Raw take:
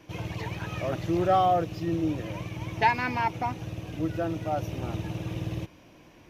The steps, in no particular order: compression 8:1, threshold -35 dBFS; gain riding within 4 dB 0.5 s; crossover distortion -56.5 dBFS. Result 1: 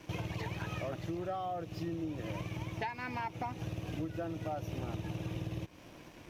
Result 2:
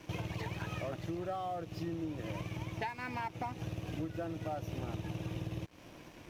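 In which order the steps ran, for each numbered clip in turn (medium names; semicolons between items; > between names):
gain riding > crossover distortion > compression; gain riding > compression > crossover distortion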